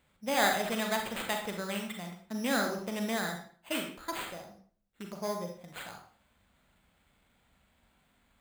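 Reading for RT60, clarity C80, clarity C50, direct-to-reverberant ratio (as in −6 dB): 0.45 s, 9.5 dB, 5.5 dB, 2.5 dB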